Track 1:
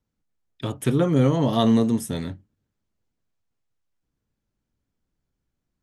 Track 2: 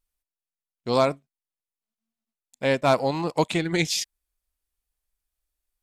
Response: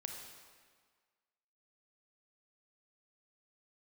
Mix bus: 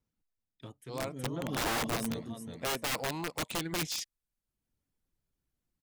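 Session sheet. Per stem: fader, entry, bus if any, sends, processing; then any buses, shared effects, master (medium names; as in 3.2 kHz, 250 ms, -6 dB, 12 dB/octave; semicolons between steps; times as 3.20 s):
-4.5 dB, 0.00 s, no send, echo send -12 dB, reverb removal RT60 0.79 s; auto duck -20 dB, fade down 0.65 s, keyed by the second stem
0.89 s -19.5 dB -> 1.47 s -9.5 dB, 0.00 s, no send, no echo send, none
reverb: none
echo: feedback delay 370 ms, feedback 30%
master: integer overflow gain 26.5 dB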